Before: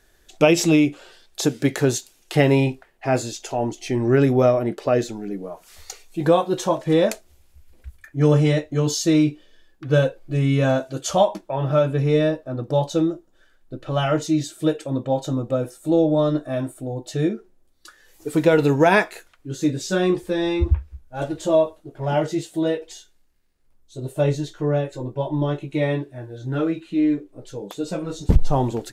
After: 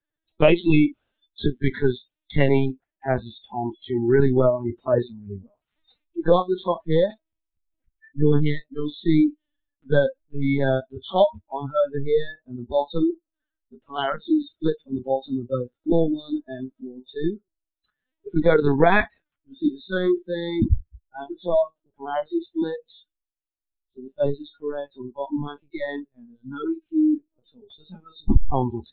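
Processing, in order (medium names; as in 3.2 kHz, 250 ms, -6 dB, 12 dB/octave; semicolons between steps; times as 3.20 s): LPC vocoder at 8 kHz pitch kept; spectral noise reduction 29 dB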